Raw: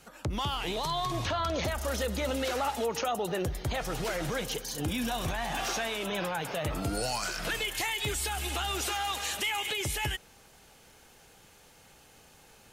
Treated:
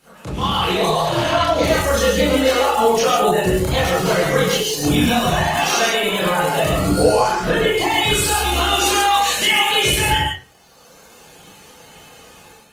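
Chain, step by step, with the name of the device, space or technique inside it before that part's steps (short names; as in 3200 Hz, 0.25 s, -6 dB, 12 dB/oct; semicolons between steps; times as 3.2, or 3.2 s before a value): 0.85–1.26 spectral repair 420–6000 Hz both; reverb removal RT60 1.8 s; 6.98–7.94 tilt shelf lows +9 dB, about 1100 Hz; non-linear reverb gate 0.16 s rising, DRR 2 dB; far-field microphone of a smart speaker (reverb RT60 0.40 s, pre-delay 23 ms, DRR -6 dB; HPF 110 Hz 6 dB/oct; AGC gain up to 9 dB; Opus 24 kbps 48000 Hz)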